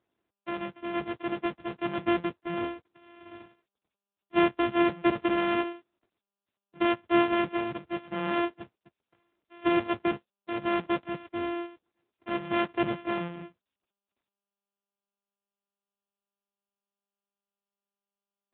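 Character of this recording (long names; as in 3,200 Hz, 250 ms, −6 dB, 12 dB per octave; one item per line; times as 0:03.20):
a buzz of ramps at a fixed pitch in blocks of 128 samples
AMR narrowband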